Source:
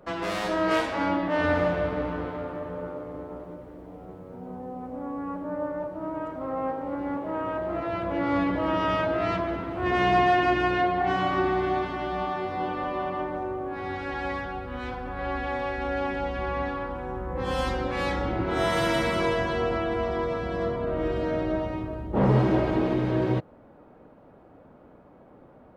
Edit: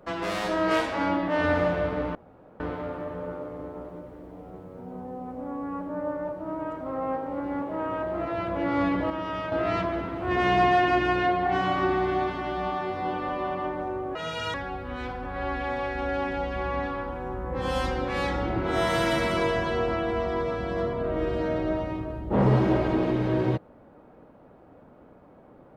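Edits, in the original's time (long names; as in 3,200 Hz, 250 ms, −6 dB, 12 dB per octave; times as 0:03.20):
0:02.15: splice in room tone 0.45 s
0:08.65–0:09.07: clip gain −6.5 dB
0:13.70–0:14.37: play speed 171%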